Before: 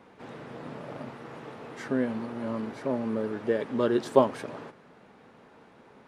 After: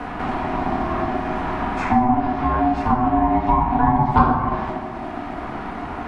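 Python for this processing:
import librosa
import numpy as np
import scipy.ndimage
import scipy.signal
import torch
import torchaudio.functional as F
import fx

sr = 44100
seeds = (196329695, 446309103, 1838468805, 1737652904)

y = fx.env_lowpass_down(x, sr, base_hz=940.0, full_db=-23.0)
y = fx.cheby_harmonics(y, sr, harmonics=(5, 7), levels_db=(-26, -25), full_scale_db=-7.0)
y = fx.room_shoebox(y, sr, seeds[0], volume_m3=330.0, walls='mixed', distance_m=1.8)
y = y * np.sin(2.0 * np.pi * 500.0 * np.arange(len(y)) / sr)
y = fx.band_squash(y, sr, depth_pct=70)
y = y * 10.0 ** (8.0 / 20.0)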